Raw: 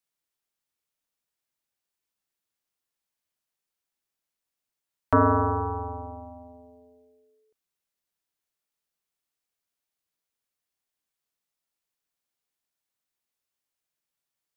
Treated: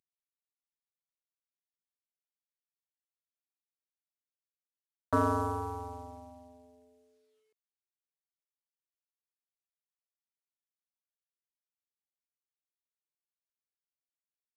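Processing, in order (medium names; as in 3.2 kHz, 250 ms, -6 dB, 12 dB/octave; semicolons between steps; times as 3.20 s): CVSD coder 64 kbps; high-pass 74 Hz; trim -7.5 dB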